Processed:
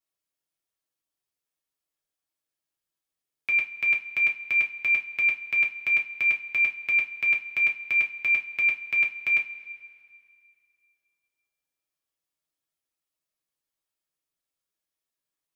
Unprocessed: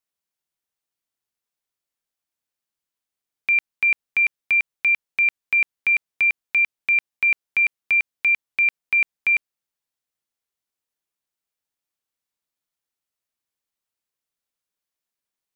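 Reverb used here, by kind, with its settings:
coupled-rooms reverb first 0.23 s, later 2.3 s, from −21 dB, DRR −1.5 dB
level −5.5 dB

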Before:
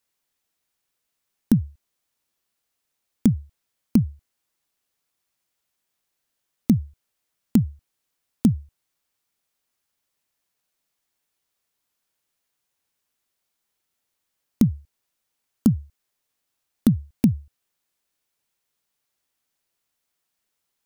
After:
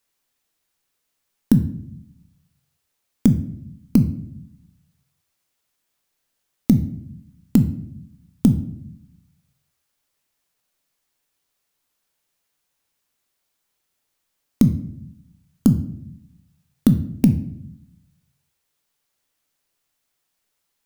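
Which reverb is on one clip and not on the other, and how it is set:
rectangular room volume 130 cubic metres, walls mixed, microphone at 0.34 metres
level +3 dB

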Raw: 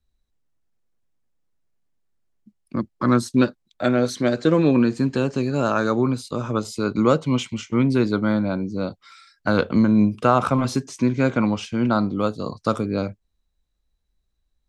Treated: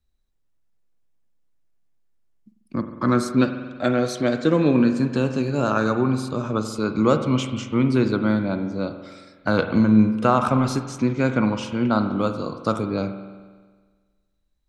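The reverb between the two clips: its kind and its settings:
spring reverb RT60 1.5 s, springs 46 ms, chirp 70 ms, DRR 7.5 dB
level −1 dB

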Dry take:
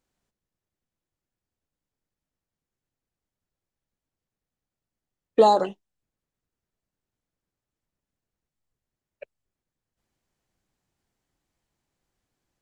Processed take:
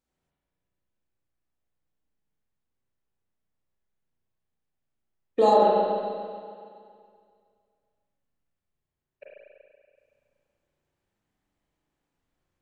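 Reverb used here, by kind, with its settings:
spring reverb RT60 2.2 s, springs 34/47 ms, chirp 55 ms, DRR −5.5 dB
level −6.5 dB

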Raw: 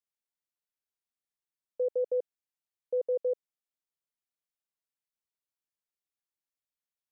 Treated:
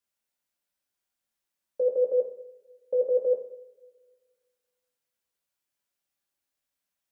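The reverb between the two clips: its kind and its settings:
coupled-rooms reverb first 0.58 s, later 1.8 s, from −20 dB, DRR −2.5 dB
level +4 dB

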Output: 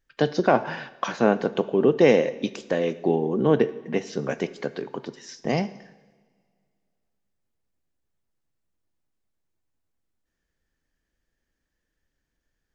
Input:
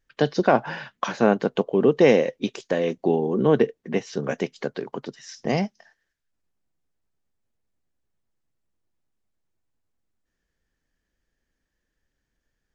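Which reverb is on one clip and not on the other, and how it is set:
coupled-rooms reverb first 0.92 s, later 2.4 s, DRR 13 dB
level −1 dB

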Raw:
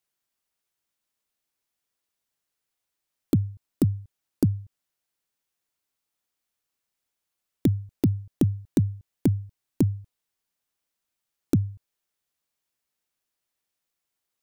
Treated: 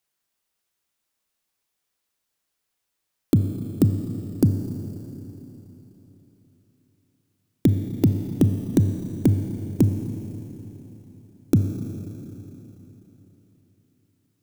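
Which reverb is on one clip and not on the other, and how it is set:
four-comb reverb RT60 3.8 s, combs from 28 ms, DRR 6 dB
level +3.5 dB

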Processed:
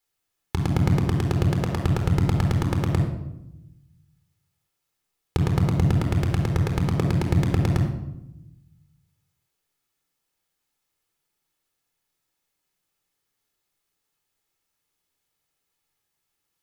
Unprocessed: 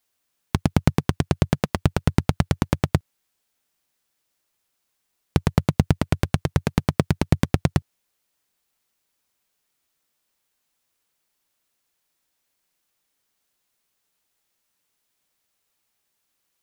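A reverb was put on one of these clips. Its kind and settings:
rectangular room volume 3,100 cubic metres, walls furnished, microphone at 4.1 metres
level −6.5 dB

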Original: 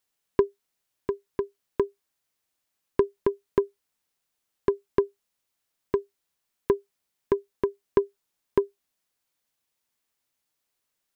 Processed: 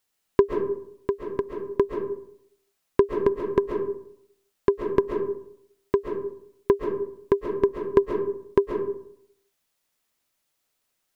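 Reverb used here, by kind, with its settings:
comb and all-pass reverb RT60 0.7 s, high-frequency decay 0.45×, pre-delay 95 ms, DRR 2.5 dB
level +3 dB

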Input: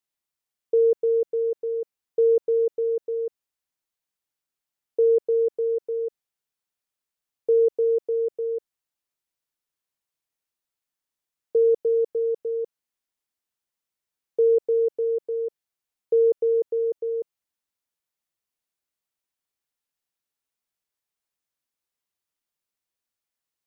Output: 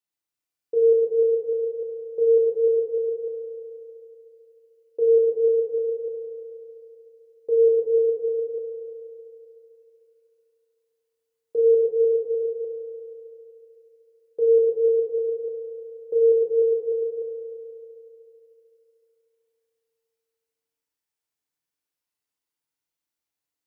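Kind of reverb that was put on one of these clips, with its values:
feedback delay network reverb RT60 3.1 s, low-frequency decay 0.7×, high-frequency decay 0.85×, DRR −3.5 dB
level −5.5 dB

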